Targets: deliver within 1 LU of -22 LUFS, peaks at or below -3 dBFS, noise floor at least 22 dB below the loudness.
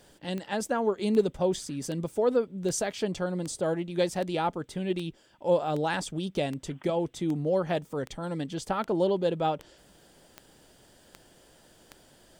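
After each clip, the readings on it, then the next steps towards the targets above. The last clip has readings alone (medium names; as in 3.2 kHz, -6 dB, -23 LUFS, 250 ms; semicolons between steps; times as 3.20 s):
clicks found 16; loudness -29.5 LUFS; peak level -12.5 dBFS; loudness target -22.0 LUFS
-> de-click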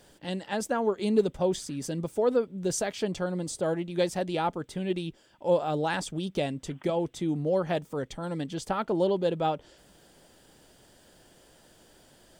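clicks found 0; loudness -29.5 LUFS; peak level -12.5 dBFS; loudness target -22.0 LUFS
-> trim +7.5 dB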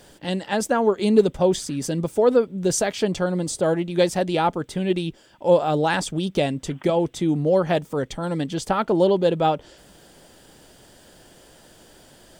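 loudness -22.0 LUFS; peak level -5.0 dBFS; noise floor -51 dBFS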